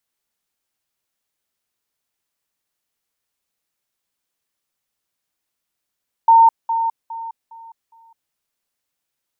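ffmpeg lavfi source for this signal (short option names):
-f lavfi -i "aevalsrc='pow(10,(-6.5-10*floor(t/0.41))/20)*sin(2*PI*912*t)*clip(min(mod(t,0.41),0.21-mod(t,0.41))/0.005,0,1)':d=2.05:s=44100"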